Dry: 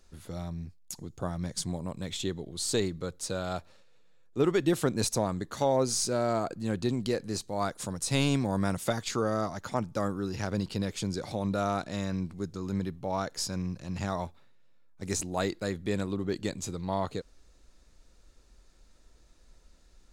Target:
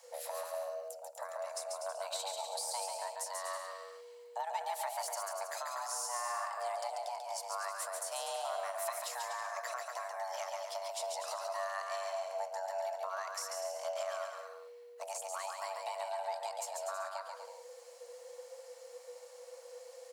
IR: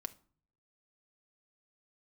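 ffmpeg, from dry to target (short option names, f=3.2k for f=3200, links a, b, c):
-filter_complex "[0:a]highshelf=f=7.2k:g=10,acompressor=threshold=-40dB:ratio=6,alimiter=level_in=8dB:limit=-24dB:level=0:latency=1:release=423,volume=-8dB,afreqshift=480,aecho=1:1:140|245|323.8|382.8|427.1:0.631|0.398|0.251|0.158|0.1,asplit=2[a][b];[1:a]atrim=start_sample=2205[c];[b][c]afir=irnorm=-1:irlink=0,volume=-0.5dB[d];[a][d]amix=inputs=2:normalize=0,volume=-1dB"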